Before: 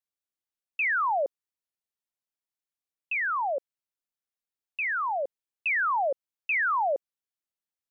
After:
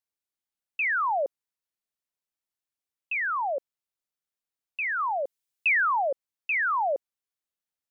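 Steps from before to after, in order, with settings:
0:04.99–0:06.02: high-shelf EQ 2,500 Hz +9 dB

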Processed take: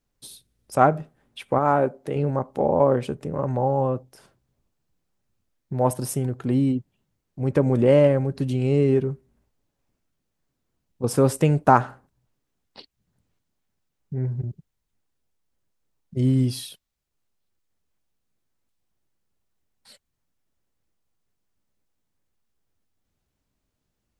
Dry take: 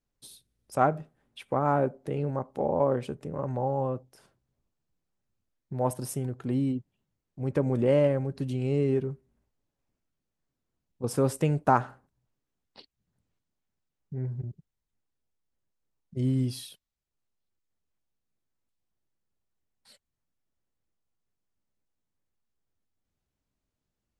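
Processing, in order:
0:01.58–0:02.16: low-shelf EQ 230 Hz −7.5 dB
level +6.5 dB

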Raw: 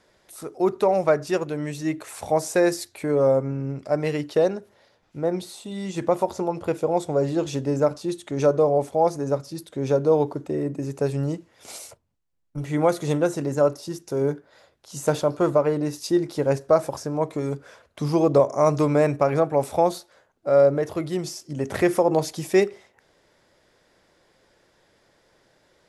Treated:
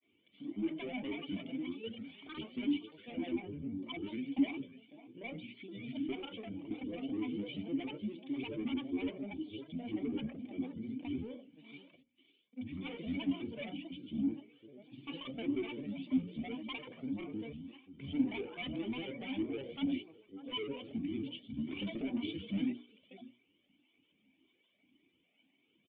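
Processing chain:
high-pass filter 160 Hz 12 dB per octave
single-tap delay 538 ms −17.5 dB
on a send at −7 dB: convolution reverb, pre-delay 3 ms
on the sum: granular cloud, spray 37 ms, pitch spread up and down by 12 semitones
soft clipping −22 dBFS, distortion −8 dB
formant resonators in series i
spectral tilt +2.5 dB per octave
mains-hum notches 60/120/180/240/300/360/420/480/540 Hz
flanger whose copies keep moving one way rising 1.8 Hz
level +9 dB

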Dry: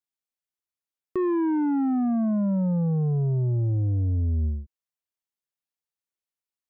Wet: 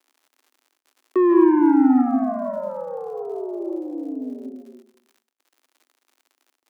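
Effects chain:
comb and all-pass reverb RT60 0.66 s, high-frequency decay 0.4×, pre-delay 120 ms, DRR 2 dB
surface crackle 100 per second −50 dBFS
Chebyshev high-pass with heavy ripple 250 Hz, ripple 3 dB
noise gate with hold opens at −51 dBFS
level +8 dB

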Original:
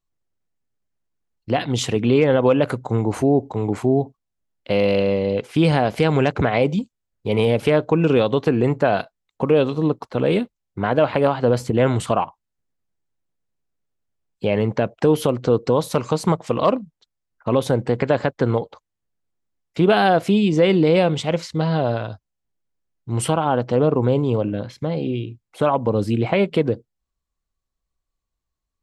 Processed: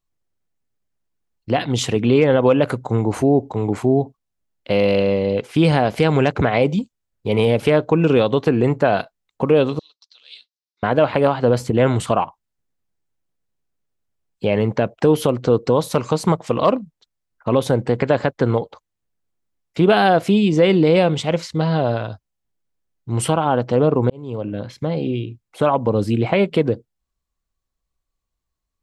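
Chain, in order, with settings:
0:09.79–0:10.83: flat-topped band-pass 4,700 Hz, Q 2.1
0:24.10–0:24.74: fade in
level +1.5 dB

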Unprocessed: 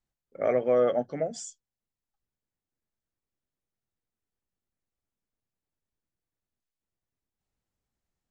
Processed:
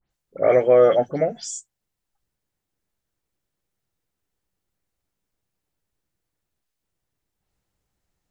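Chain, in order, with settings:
every frequency bin delayed by itself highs late, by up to 103 ms
level +9 dB

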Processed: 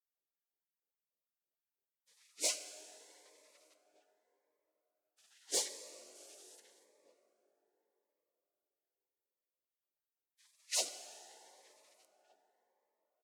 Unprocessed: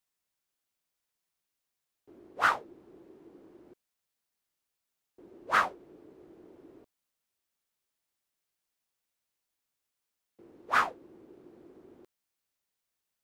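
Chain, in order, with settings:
meter weighting curve ITU-R 468
gate on every frequency bin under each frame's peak −25 dB weak
0:06.15–0:06.60: parametric band 9,200 Hz +12.5 dB 2.4 octaves
in parallel at −10 dB: sine wavefolder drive 6 dB, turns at −24 dBFS
on the sum: auto-filter high-pass sine 3.2 Hz 370–2,100 Hz
slap from a distant wall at 260 metres, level −27 dB
dense smooth reverb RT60 4.5 s, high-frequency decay 0.45×, DRR 8.5 dB
phaser whose notches keep moving one way rising 0.84 Hz

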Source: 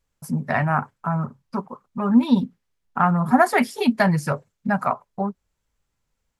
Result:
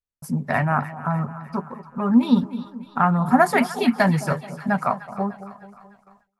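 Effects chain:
echo with a time of its own for lows and highs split 940 Hz, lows 216 ms, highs 301 ms, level −14 dB
noise gate with hold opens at −44 dBFS

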